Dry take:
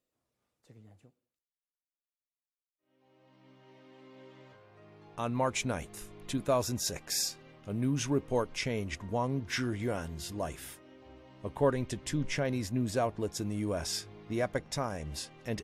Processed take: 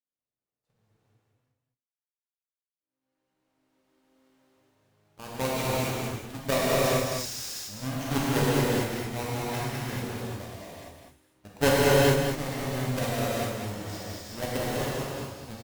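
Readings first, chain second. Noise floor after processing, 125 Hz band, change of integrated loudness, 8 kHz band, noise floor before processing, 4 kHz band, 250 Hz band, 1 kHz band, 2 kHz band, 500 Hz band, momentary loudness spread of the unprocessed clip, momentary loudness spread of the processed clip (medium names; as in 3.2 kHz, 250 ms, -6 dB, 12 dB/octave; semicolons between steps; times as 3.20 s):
under -85 dBFS, +5.5 dB, +5.5 dB, +2.5 dB, under -85 dBFS, +5.0 dB, +3.5 dB, +5.5 dB, +8.0 dB, +6.0 dB, 10 LU, 14 LU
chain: square wave that keeps the level; Chebyshev shaper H 3 -10 dB, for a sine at -16 dBFS; delay 202 ms -6 dB; gated-style reverb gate 480 ms flat, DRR -8 dB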